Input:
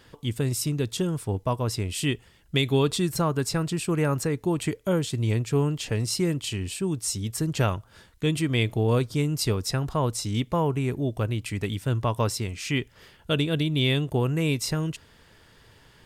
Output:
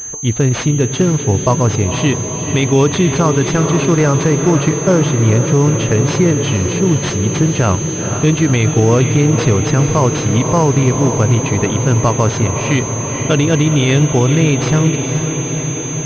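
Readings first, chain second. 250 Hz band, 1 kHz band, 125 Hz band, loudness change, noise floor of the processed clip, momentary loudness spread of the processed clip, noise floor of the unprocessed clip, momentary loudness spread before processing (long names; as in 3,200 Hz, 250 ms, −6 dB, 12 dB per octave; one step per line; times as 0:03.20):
+13.0 dB, +12.5 dB, +13.5 dB, +12.5 dB, −21 dBFS, 4 LU, −56 dBFS, 6 LU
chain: feedback delay with all-pass diffusion 486 ms, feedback 75%, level −9 dB
boost into a limiter +14 dB
switching amplifier with a slow clock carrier 6,300 Hz
level −1 dB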